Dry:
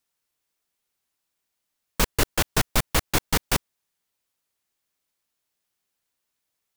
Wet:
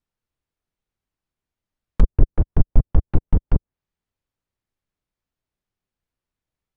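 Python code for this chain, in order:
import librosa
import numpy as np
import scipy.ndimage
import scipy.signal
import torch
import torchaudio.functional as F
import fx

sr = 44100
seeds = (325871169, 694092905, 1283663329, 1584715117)

y = fx.env_lowpass_down(x, sr, base_hz=530.0, full_db=-20.5)
y = fx.riaa(y, sr, side='playback')
y = F.gain(torch.from_numpy(y), -4.5).numpy()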